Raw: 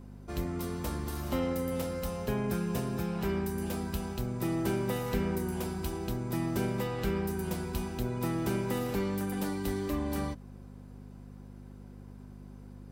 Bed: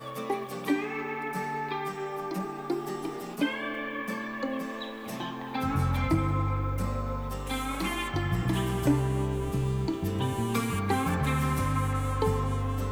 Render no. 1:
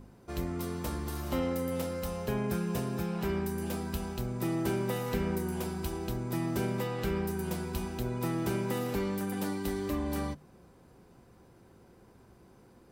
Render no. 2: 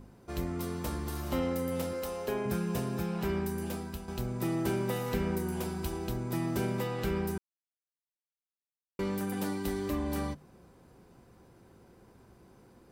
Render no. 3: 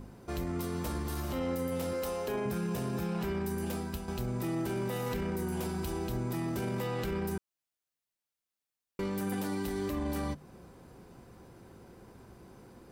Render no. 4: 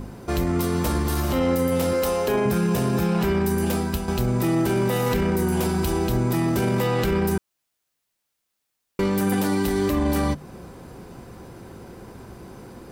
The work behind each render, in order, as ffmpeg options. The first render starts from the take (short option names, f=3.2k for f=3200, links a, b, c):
-af "bandreject=f=50:t=h:w=4,bandreject=f=100:t=h:w=4,bandreject=f=150:t=h:w=4,bandreject=f=200:t=h:w=4,bandreject=f=250:t=h:w=4"
-filter_complex "[0:a]asettb=1/sr,asplit=3[a][b][c];[a]atrim=end=1.934[d];[b]atrim=start=1.93:end=2.46,asetpts=PTS-STARTPTS,afade=t=in:d=0.004:c=qsin,afade=t=out:st=0.526:d=0.004:c=qsin,lowshelf=f=230:t=q:w=1.5:g=-9.5[e];[c]atrim=start=2.456[f];[d][e]acrossfade=d=0.004:c1=hsin:c2=qsin[g];[g][f]acrossfade=d=0.004:c1=qsin:c2=hsin,asplit=4[h][i][j][k];[h]atrim=end=4.08,asetpts=PTS-STARTPTS,afade=t=out:st=3.4:d=0.68:c=qsin:silence=0.334965[l];[i]atrim=start=4.08:end=7.38,asetpts=PTS-STARTPTS,afade=t=in:d=0.004:c=hsin:silence=0.334965,afade=t=out:st=3.296:d=0.004:c=hsin[m];[j]atrim=start=7.38:end=8.99,asetpts=PTS-STARTPTS,volume=0[n];[k]atrim=start=8.99,asetpts=PTS-STARTPTS,afade=t=in:d=0.004:c=hsin[o];[l][m][n][o]concat=n=4:v=0:a=1"
-filter_complex "[0:a]asplit=2[a][b];[b]acompressor=threshold=-42dB:ratio=6,volume=-3dB[c];[a][c]amix=inputs=2:normalize=0,alimiter=level_in=2.5dB:limit=-24dB:level=0:latency=1:release=11,volume=-2.5dB"
-af "volume=12dB"